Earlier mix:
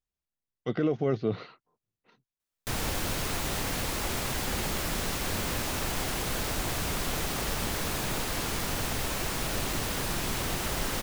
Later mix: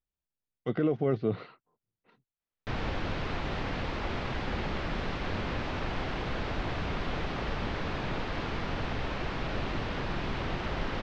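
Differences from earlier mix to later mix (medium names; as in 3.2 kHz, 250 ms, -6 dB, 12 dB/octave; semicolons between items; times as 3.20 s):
background: add low-pass 4.6 kHz 12 dB/octave; master: add distance through air 210 m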